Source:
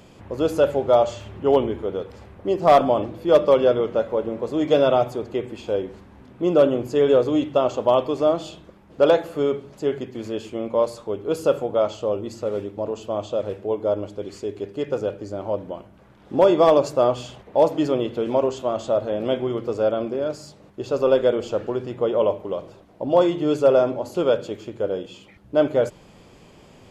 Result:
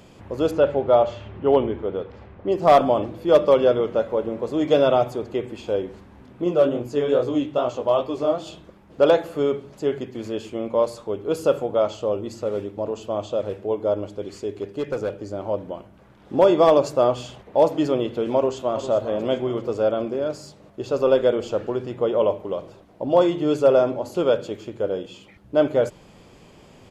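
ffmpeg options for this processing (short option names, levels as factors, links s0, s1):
-filter_complex "[0:a]asettb=1/sr,asplit=3[s0][s1][s2];[s0]atrim=end=0.514[s3];[s1]atrim=start=0.51:end=2.52,asetpts=PTS-STARTPTS,afade=t=in:d=0.004:c=qsin,afade=t=out:st=2.006:d=0.004:c=qsin,lowpass=3300[s4];[s2]atrim=start=2.516[s5];[s3][s4]acrossfade=d=0.004:c1=hsin:c2=qsin[s6];[s6][s5]acrossfade=d=0.004:c1=qsin:c2=hsin,asettb=1/sr,asplit=3[s7][s8][s9];[s7]atrim=end=6.444[s10];[s8]atrim=start=6.44:end=8.47,asetpts=PTS-STARTPTS,afade=t=in:d=0.004:c=qsin,afade=t=out:st=2.026:d=0.004:c=qsin,flanger=delay=16.5:depth=6.4:speed=2.4[s11];[s9]atrim=start=8.466[s12];[s10][s11]acrossfade=d=0.004:c1=hsin:c2=qsin[s13];[s13][s12]acrossfade=d=0.004:c1=qsin:c2=hsin,asettb=1/sr,asplit=3[s14][s15][s16];[s14]atrim=end=14.524[s17];[s15]atrim=start=14.52:end=15.25,asetpts=PTS-STARTPTS,afade=t=in:d=0.004:c=qsin,afade=t=out:st=0.726:d=0.004:c=qsin,volume=10,asoftclip=hard,volume=0.1[s18];[s16]atrim=start=15.246[s19];[s17][s18]acrossfade=d=0.004:c1=hsin:c2=qsin[s20];[s20][s19]acrossfade=d=0.004:c1=qsin:c2=hsin,asplit=2[s21][s22];[s22]afade=t=in:st=18.35:d=0.01,afade=t=out:st=18.81:d=0.01,aecho=0:1:400|800|1200|1600|2000:0.266073|0.133036|0.0665181|0.0332591|0.0166295[s23];[s21][s23]amix=inputs=2:normalize=0"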